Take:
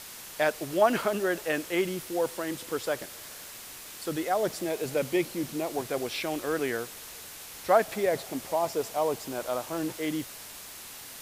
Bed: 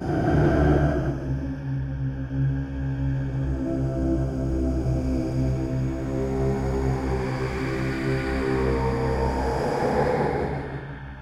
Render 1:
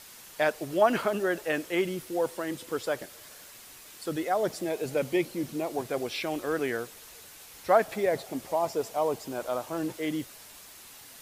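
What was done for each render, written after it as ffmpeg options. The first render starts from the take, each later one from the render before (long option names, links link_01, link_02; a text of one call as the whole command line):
ffmpeg -i in.wav -af "afftdn=noise_reduction=6:noise_floor=-44" out.wav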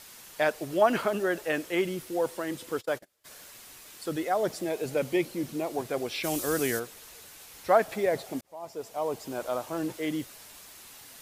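ffmpeg -i in.wav -filter_complex "[0:a]asplit=3[link_01][link_02][link_03];[link_01]afade=type=out:start_time=2.76:duration=0.02[link_04];[link_02]agate=range=-27dB:threshold=-38dB:ratio=16:release=100:detection=peak,afade=type=in:start_time=2.76:duration=0.02,afade=type=out:start_time=3.24:duration=0.02[link_05];[link_03]afade=type=in:start_time=3.24:duration=0.02[link_06];[link_04][link_05][link_06]amix=inputs=3:normalize=0,asplit=3[link_07][link_08][link_09];[link_07]afade=type=out:start_time=6.23:duration=0.02[link_10];[link_08]bass=frequency=250:gain=6,treble=frequency=4000:gain=15,afade=type=in:start_time=6.23:duration=0.02,afade=type=out:start_time=6.78:duration=0.02[link_11];[link_09]afade=type=in:start_time=6.78:duration=0.02[link_12];[link_10][link_11][link_12]amix=inputs=3:normalize=0,asplit=2[link_13][link_14];[link_13]atrim=end=8.41,asetpts=PTS-STARTPTS,afade=type=out:start_time=8.406:duration=0.004:curve=hsin[link_15];[link_14]atrim=start=8.41,asetpts=PTS-STARTPTS,afade=type=in:duration=0.92[link_16];[link_15][link_16]concat=n=2:v=0:a=1" out.wav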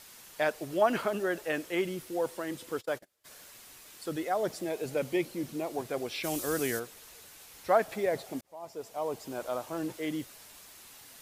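ffmpeg -i in.wav -af "volume=-3dB" out.wav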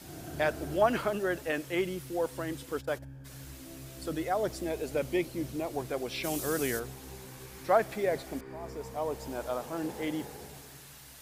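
ffmpeg -i in.wav -i bed.wav -filter_complex "[1:a]volume=-21.5dB[link_01];[0:a][link_01]amix=inputs=2:normalize=0" out.wav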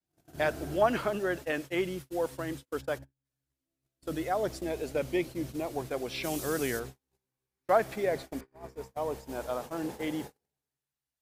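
ffmpeg -i in.wav -af "agate=range=-42dB:threshold=-39dB:ratio=16:detection=peak,adynamicequalizer=threshold=0.00251:dfrequency=7300:dqfactor=0.7:tfrequency=7300:tqfactor=0.7:attack=5:release=100:ratio=0.375:range=2:mode=cutabove:tftype=highshelf" out.wav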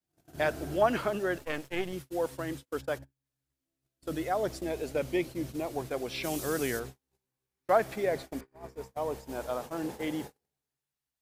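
ffmpeg -i in.wav -filter_complex "[0:a]asettb=1/sr,asplit=3[link_01][link_02][link_03];[link_01]atrim=end=1.384[link_04];[link_02]atrim=start=1.38:end=1.93,asetpts=PTS-STARTPTS,afade=type=in:duration=0.004:curve=qsin,afade=type=out:start_time=0.546:duration=0.004:curve=qsin,aeval=exprs='if(lt(val(0),0),0.251*val(0),val(0))':channel_layout=same[link_05];[link_03]atrim=start=1.926[link_06];[link_04][link_05]acrossfade=duration=0.004:curve1=hsin:curve2=qsin[link_07];[link_07][link_06]acrossfade=duration=0.004:curve1=qsin:curve2=hsin" out.wav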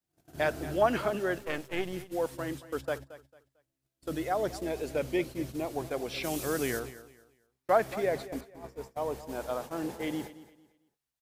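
ffmpeg -i in.wav -af "aecho=1:1:224|448|672:0.158|0.0444|0.0124" out.wav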